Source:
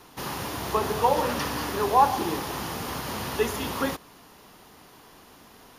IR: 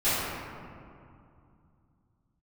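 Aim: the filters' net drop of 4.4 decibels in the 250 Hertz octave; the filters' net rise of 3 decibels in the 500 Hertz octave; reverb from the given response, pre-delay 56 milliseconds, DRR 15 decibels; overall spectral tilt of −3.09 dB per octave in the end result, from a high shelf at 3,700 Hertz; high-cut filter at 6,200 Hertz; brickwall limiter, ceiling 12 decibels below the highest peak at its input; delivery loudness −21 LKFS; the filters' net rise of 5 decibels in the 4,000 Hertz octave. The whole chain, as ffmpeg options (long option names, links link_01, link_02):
-filter_complex "[0:a]lowpass=6200,equalizer=frequency=250:width_type=o:gain=-8,equalizer=frequency=500:width_type=o:gain=5.5,highshelf=frequency=3700:gain=6.5,equalizer=frequency=4000:width_type=o:gain=3,alimiter=limit=-18dB:level=0:latency=1,asplit=2[link_01][link_02];[1:a]atrim=start_sample=2205,adelay=56[link_03];[link_02][link_03]afir=irnorm=-1:irlink=0,volume=-30dB[link_04];[link_01][link_04]amix=inputs=2:normalize=0,volume=7.5dB"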